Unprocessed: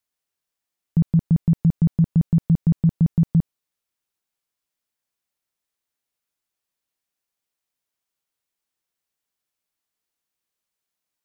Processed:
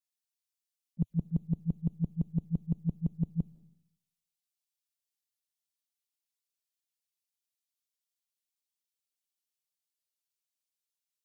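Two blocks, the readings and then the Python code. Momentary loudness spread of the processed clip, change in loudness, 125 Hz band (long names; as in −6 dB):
4 LU, −14.0 dB, −14.0 dB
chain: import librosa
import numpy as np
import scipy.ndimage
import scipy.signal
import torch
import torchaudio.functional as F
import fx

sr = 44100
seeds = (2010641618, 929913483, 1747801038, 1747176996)

y = fx.dynamic_eq(x, sr, hz=110.0, q=2.2, threshold_db=-33.0, ratio=4.0, max_db=-5)
y = fx.auto_swell(y, sr, attack_ms=129.0)
y = fx.env_flanger(y, sr, rest_ms=5.8, full_db=-27.5)
y = fx.rev_freeverb(y, sr, rt60_s=1.2, hf_ratio=0.95, predelay_ms=115, drr_db=18.5)
y = fx.band_widen(y, sr, depth_pct=70)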